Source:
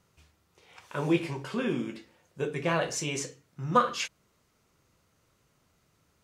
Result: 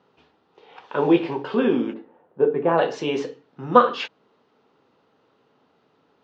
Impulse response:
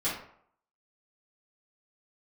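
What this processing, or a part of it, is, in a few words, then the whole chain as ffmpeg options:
kitchen radio: -filter_complex "[0:a]highpass=220,equalizer=frequency=260:width_type=q:width=4:gain=7,equalizer=frequency=440:width_type=q:width=4:gain=8,equalizer=frequency=830:width_type=q:width=4:gain=8,equalizer=frequency=2200:width_type=q:width=4:gain=-7,lowpass=frequency=3800:width=0.5412,lowpass=frequency=3800:width=1.3066,asplit=3[link_01][link_02][link_03];[link_01]afade=type=out:start_time=1.93:duration=0.02[link_04];[link_02]lowpass=1300,afade=type=in:start_time=1.93:duration=0.02,afade=type=out:start_time=2.77:duration=0.02[link_05];[link_03]afade=type=in:start_time=2.77:duration=0.02[link_06];[link_04][link_05][link_06]amix=inputs=3:normalize=0,volume=6.5dB"

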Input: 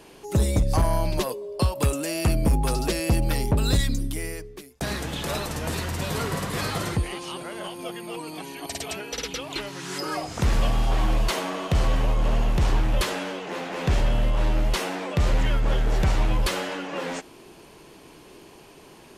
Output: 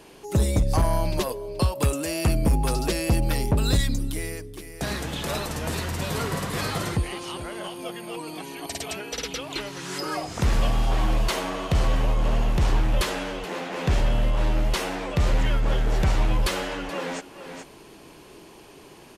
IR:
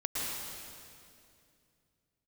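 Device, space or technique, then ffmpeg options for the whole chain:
ducked delay: -filter_complex "[0:a]asplit=3[link_01][link_02][link_03];[link_02]adelay=427,volume=-6.5dB[link_04];[link_03]apad=whole_len=864462[link_05];[link_04][link_05]sidechaincompress=threshold=-40dB:ratio=5:attack=8.4:release=415[link_06];[link_01][link_06]amix=inputs=2:normalize=0"

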